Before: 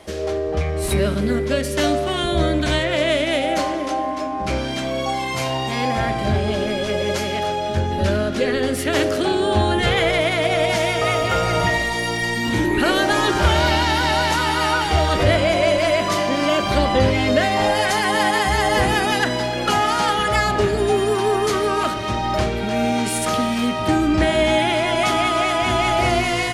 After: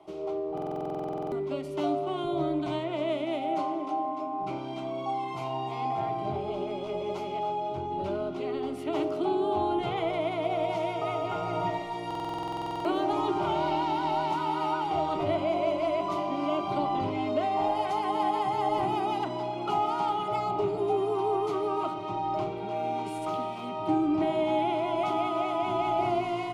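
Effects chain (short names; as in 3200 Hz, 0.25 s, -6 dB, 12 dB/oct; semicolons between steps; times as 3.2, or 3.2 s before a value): three-band isolator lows -12 dB, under 160 Hz, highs -21 dB, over 2600 Hz; fixed phaser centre 340 Hz, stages 8; stuck buffer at 0.53/12.06, samples 2048, times 16; gain -6 dB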